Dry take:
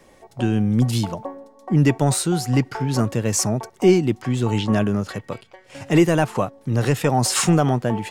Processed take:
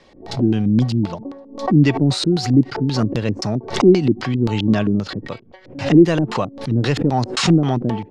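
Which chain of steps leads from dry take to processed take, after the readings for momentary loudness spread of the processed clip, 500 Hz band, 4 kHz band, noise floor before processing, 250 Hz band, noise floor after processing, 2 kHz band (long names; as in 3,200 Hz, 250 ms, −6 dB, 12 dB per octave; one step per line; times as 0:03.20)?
14 LU, +1.5 dB, +3.5 dB, −53 dBFS, +4.5 dB, −46 dBFS, +0.5 dB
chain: auto-filter low-pass square 3.8 Hz 300–4,300 Hz
background raised ahead of every attack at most 120 dB per second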